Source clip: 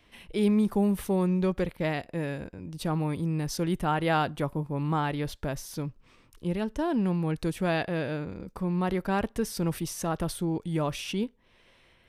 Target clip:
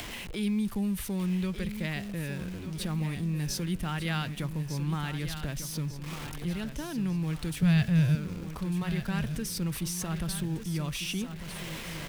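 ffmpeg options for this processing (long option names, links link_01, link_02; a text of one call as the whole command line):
ffmpeg -i in.wav -filter_complex "[0:a]aeval=exprs='val(0)+0.5*0.00944*sgn(val(0))':channel_layout=same,acompressor=mode=upward:threshold=-36dB:ratio=2.5,asettb=1/sr,asplit=3[link_01][link_02][link_03];[link_01]atrim=end=7.624[link_04];[link_02]atrim=start=7.62:end=8.15,asetpts=PTS-STARTPTS,afade=type=in:duration=0.004:curve=qsin,afade=type=out:start_time=0.526:duration=0.004:curve=qsin,lowshelf=frequency=200:width_type=q:width=3:gain=8.5[link_05];[link_03]atrim=start=8.146[link_06];[link_04][link_05]acrossfade=duration=0.004:curve1=hsin:curve2=qsin[link_07];[link_07][link_06]acrossfade=duration=0.004:curve1=qsin:curve2=hsin,acrossover=split=200|1600|5000[link_08][link_09][link_10][link_11];[link_09]acompressor=threshold=-42dB:ratio=6[link_12];[link_08][link_12][link_10][link_11]amix=inputs=4:normalize=0,aecho=1:1:1198|2396|3594|4792|5990:0.316|0.142|0.064|0.0288|0.013" out.wav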